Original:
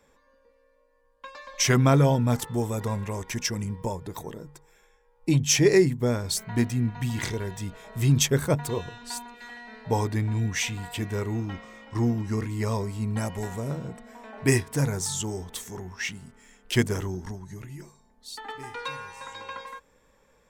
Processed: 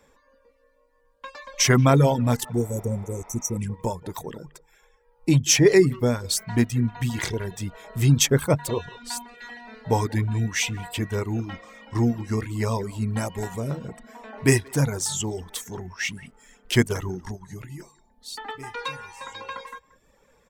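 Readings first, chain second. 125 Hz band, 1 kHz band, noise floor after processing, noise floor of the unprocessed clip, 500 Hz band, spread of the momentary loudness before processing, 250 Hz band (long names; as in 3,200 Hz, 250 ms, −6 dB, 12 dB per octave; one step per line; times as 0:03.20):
+2.0 dB, +2.5 dB, −62 dBFS, −64 dBFS, +3.0 dB, 20 LU, +2.5 dB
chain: far-end echo of a speakerphone 180 ms, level −14 dB
reverb reduction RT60 0.63 s
healed spectral selection 0:02.58–0:03.54, 580–5,600 Hz both
level +3.5 dB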